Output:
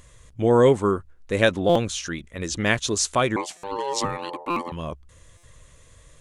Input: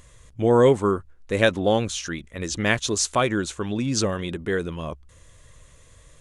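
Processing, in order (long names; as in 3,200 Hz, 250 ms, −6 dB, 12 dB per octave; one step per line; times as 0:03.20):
0:03.36–0:04.72: ring modulation 690 Hz
buffer that repeats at 0:01.69/0:03.57/0:04.50/0:05.37, samples 256, times 10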